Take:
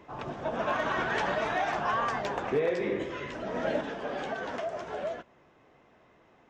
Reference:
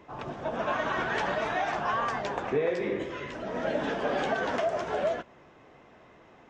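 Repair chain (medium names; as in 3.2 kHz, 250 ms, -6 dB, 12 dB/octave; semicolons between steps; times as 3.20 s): clip repair -20 dBFS; gain correction +6 dB, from 3.81 s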